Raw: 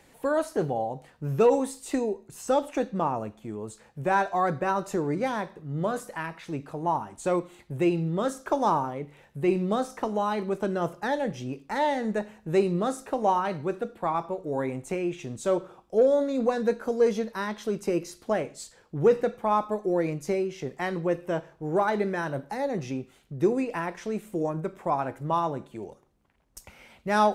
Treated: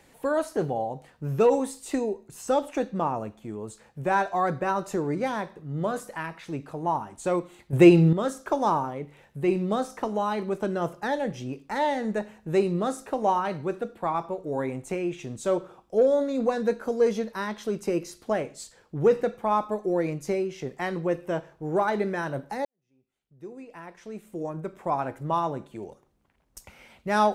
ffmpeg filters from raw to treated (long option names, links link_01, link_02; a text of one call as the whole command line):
ffmpeg -i in.wav -filter_complex "[0:a]asplit=4[link_01][link_02][link_03][link_04];[link_01]atrim=end=7.732[link_05];[link_02]atrim=start=7.728:end=8.132,asetpts=PTS-STARTPTS,volume=10dB[link_06];[link_03]atrim=start=8.128:end=22.65,asetpts=PTS-STARTPTS,afade=type=out:start_time=14.518:duration=0.004:curve=hsin[link_07];[link_04]atrim=start=22.65,asetpts=PTS-STARTPTS,afade=type=in:duration=2.32:curve=qua[link_08];[link_05][link_06]acrossfade=duration=0.004:curve1=hsin:curve2=hsin[link_09];[link_07][link_08]concat=n=2:v=0:a=1[link_10];[link_09][link_10]acrossfade=duration=0.004:curve1=hsin:curve2=hsin" out.wav